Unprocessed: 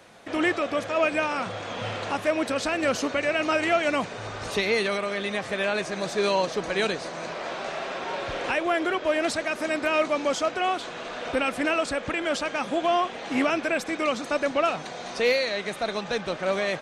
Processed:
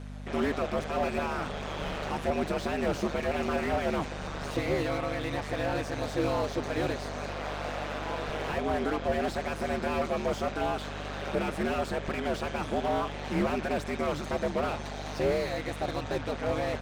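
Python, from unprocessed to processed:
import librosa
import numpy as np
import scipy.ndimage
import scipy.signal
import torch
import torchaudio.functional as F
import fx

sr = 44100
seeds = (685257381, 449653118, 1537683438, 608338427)

y = x * np.sin(2.0 * np.pi * 75.0 * np.arange(len(x)) / sr)
y = fx.dmg_buzz(y, sr, base_hz=50.0, harmonics=5, level_db=-41.0, tilt_db=-4, odd_only=False)
y = fx.slew_limit(y, sr, full_power_hz=40.0)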